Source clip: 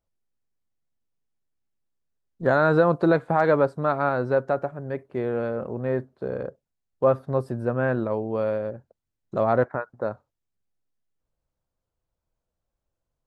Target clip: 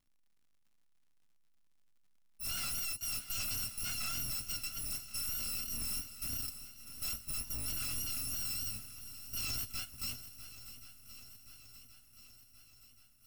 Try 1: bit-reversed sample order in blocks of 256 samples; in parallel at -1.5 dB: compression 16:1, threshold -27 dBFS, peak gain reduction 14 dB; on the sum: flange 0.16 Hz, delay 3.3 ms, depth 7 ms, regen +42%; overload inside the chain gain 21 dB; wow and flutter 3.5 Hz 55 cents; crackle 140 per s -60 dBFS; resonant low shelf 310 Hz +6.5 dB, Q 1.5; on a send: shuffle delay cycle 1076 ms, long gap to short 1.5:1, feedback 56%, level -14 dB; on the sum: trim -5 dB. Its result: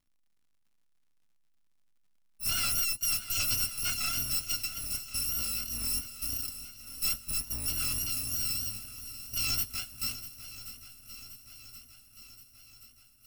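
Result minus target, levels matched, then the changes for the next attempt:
overload inside the chain: distortion -7 dB
change: overload inside the chain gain 31.5 dB

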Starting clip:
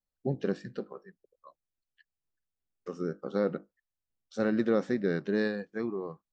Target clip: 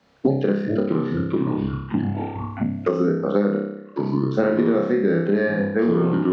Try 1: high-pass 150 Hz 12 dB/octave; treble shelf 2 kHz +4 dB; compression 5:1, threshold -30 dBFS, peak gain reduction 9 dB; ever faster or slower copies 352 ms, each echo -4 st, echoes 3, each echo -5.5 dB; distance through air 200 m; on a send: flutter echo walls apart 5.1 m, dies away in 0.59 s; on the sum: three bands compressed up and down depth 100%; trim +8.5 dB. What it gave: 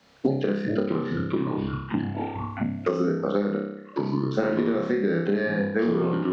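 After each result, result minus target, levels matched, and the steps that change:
compression: peak gain reduction +9 dB; 4 kHz band +5.5 dB
remove: compression 5:1, threshold -30 dBFS, peak gain reduction 9 dB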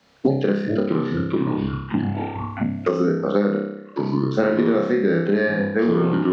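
4 kHz band +5.0 dB
change: treble shelf 2 kHz -3 dB

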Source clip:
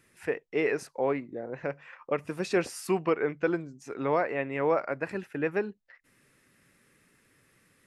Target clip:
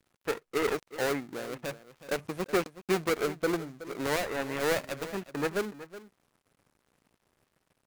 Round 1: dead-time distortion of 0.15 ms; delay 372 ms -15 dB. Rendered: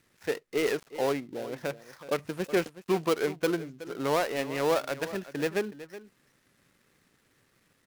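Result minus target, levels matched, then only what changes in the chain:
dead-time distortion: distortion -10 dB
change: dead-time distortion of 0.41 ms

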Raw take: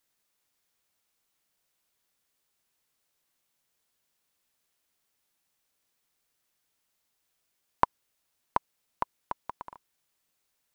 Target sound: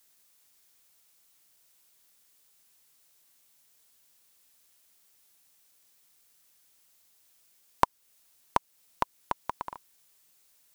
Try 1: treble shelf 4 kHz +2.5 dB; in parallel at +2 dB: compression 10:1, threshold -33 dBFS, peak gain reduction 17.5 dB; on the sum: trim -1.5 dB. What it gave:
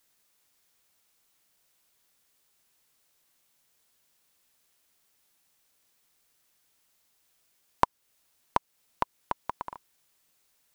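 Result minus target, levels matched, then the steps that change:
8 kHz band -4.5 dB
change: treble shelf 4 kHz +9 dB

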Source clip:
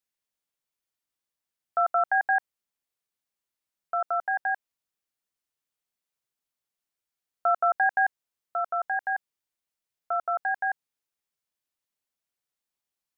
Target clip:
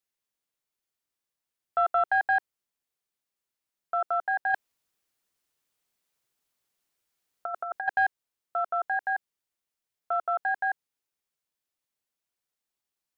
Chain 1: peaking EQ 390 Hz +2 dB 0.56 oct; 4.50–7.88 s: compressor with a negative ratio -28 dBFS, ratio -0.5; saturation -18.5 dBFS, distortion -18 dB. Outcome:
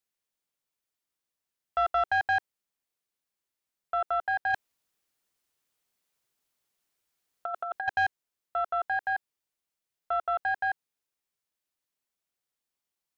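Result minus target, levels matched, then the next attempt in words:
saturation: distortion +11 dB
peaking EQ 390 Hz +2 dB 0.56 oct; 4.50–7.88 s: compressor with a negative ratio -28 dBFS, ratio -0.5; saturation -11.5 dBFS, distortion -29 dB

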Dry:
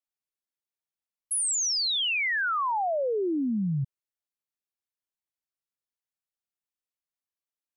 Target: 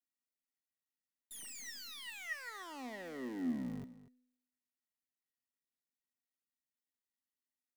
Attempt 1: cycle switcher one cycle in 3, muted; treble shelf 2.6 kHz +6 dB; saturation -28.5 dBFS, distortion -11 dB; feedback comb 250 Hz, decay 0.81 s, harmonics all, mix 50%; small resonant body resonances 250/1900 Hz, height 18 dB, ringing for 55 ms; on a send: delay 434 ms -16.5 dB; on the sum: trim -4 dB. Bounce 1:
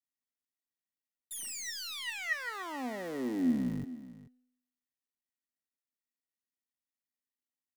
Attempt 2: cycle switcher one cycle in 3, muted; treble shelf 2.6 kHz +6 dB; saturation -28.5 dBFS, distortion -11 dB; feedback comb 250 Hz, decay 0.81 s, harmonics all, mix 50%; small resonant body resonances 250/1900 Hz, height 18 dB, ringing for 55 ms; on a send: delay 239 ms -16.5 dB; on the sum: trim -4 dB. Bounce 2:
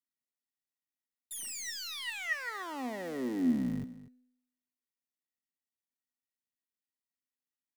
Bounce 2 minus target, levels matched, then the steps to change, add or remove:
saturation: distortion -5 dB
change: saturation -38 dBFS, distortion -6 dB

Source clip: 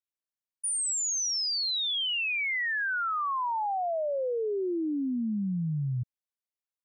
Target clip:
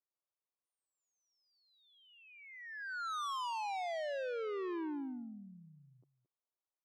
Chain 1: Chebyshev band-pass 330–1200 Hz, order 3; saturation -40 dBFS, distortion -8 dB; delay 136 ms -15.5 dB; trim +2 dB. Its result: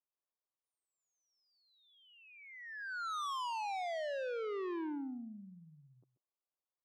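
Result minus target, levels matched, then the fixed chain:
echo 86 ms early
Chebyshev band-pass 330–1200 Hz, order 3; saturation -40 dBFS, distortion -8 dB; delay 222 ms -15.5 dB; trim +2 dB

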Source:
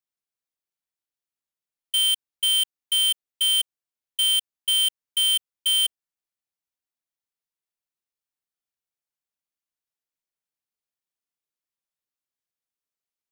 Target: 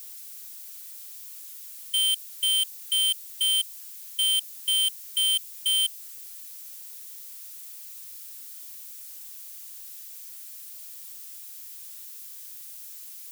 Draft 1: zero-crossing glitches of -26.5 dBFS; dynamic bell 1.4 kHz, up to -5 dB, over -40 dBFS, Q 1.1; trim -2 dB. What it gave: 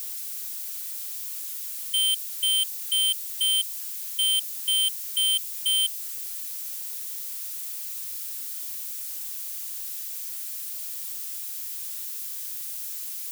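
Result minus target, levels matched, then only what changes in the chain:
zero-crossing glitches: distortion +8 dB
change: zero-crossing glitches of -34.5 dBFS

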